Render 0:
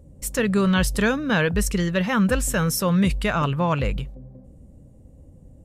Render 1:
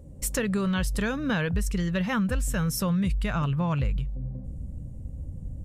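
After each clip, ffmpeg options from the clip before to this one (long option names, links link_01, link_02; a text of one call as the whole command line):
ffmpeg -i in.wav -af "asubboost=boost=3.5:cutoff=200,acompressor=threshold=-26dB:ratio=5,volume=1.5dB" out.wav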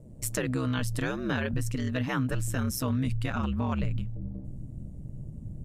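ffmpeg -i in.wav -af "aeval=exprs='val(0)*sin(2*PI*65*n/s)':channel_layout=same" out.wav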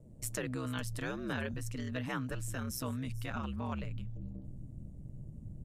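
ffmpeg -i in.wav -filter_complex "[0:a]acrossover=split=420|4900[link_01][link_02][link_03];[link_01]alimiter=level_in=2dB:limit=-24dB:level=0:latency=1,volume=-2dB[link_04];[link_03]aecho=1:1:439:0.168[link_05];[link_04][link_02][link_05]amix=inputs=3:normalize=0,volume=-6.5dB" out.wav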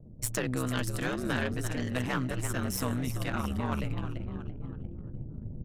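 ffmpeg -i in.wav -filter_complex "[0:a]asplit=6[link_01][link_02][link_03][link_04][link_05][link_06];[link_02]adelay=339,afreqshift=75,volume=-10dB[link_07];[link_03]adelay=678,afreqshift=150,volume=-16.7dB[link_08];[link_04]adelay=1017,afreqshift=225,volume=-23.5dB[link_09];[link_05]adelay=1356,afreqshift=300,volume=-30.2dB[link_10];[link_06]adelay=1695,afreqshift=375,volume=-37dB[link_11];[link_01][link_07][link_08][link_09][link_10][link_11]amix=inputs=6:normalize=0,aeval=exprs='0.0794*(cos(1*acos(clip(val(0)/0.0794,-1,1)))-cos(1*PI/2))+0.0112*(cos(4*acos(clip(val(0)/0.0794,-1,1)))-cos(4*PI/2))':channel_layout=same,anlmdn=0.000251,volume=5.5dB" out.wav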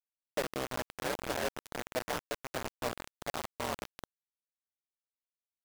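ffmpeg -i in.wav -af "bandpass=frequency=640:width_type=q:width=2:csg=0,acrusher=bits=5:mix=0:aa=0.000001,volume=3.5dB" out.wav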